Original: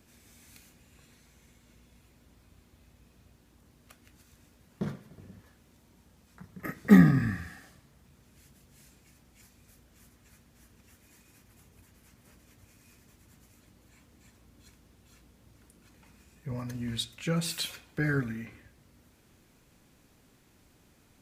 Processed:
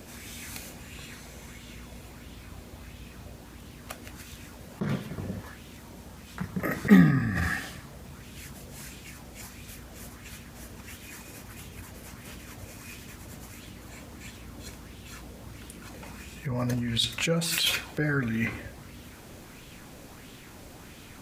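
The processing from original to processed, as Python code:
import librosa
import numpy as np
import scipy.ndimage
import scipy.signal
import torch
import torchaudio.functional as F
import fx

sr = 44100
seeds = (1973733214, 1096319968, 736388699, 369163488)

p1 = fx.over_compress(x, sr, threshold_db=-40.0, ratio=-0.5)
p2 = x + F.gain(torch.from_numpy(p1), 3.0).numpy()
y = fx.bell_lfo(p2, sr, hz=1.5, low_hz=530.0, high_hz=3300.0, db=7)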